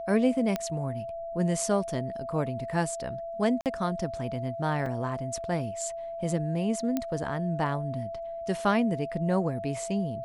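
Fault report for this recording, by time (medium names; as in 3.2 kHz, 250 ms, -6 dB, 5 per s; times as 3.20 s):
whine 670 Hz -34 dBFS
0.56 s: pop -15 dBFS
3.61–3.66 s: dropout 48 ms
4.86 s: dropout 3.3 ms
6.97 s: pop -15 dBFS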